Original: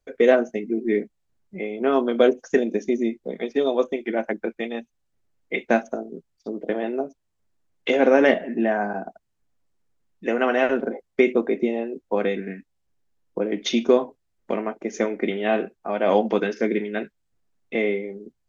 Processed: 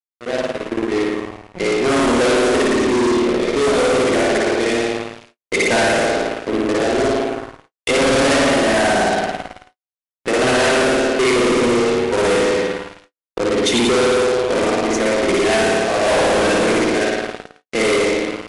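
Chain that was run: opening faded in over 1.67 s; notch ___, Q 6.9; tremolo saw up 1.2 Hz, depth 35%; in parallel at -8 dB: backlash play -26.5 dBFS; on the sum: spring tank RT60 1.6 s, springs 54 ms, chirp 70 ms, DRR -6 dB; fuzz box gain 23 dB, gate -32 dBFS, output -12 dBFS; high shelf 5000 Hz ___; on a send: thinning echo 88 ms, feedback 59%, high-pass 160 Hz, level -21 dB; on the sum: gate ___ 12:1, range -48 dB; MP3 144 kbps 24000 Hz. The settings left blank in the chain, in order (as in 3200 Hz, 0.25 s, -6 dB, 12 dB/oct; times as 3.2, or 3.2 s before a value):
210 Hz, +7.5 dB, -45 dBFS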